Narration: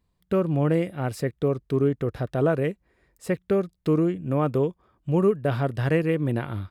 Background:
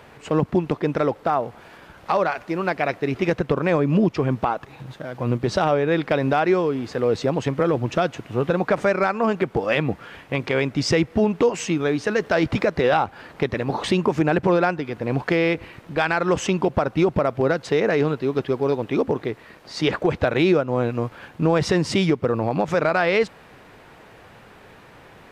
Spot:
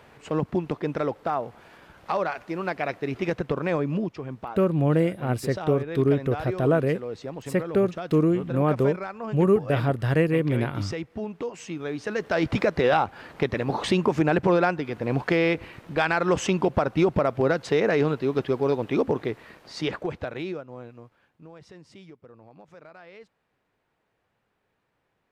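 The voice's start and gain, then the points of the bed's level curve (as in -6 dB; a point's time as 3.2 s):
4.25 s, +1.0 dB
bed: 3.81 s -5.5 dB
4.21 s -13.5 dB
11.54 s -13.5 dB
12.57 s -2 dB
19.49 s -2 dB
21.49 s -28 dB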